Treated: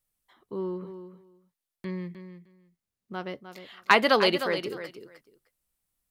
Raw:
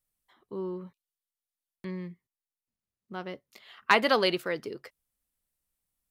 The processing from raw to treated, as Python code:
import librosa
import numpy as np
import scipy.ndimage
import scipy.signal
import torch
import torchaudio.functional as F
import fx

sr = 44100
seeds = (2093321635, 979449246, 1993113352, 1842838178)

y = fx.echo_feedback(x, sr, ms=306, feedback_pct=16, wet_db=-10.5)
y = y * librosa.db_to_amplitude(2.5)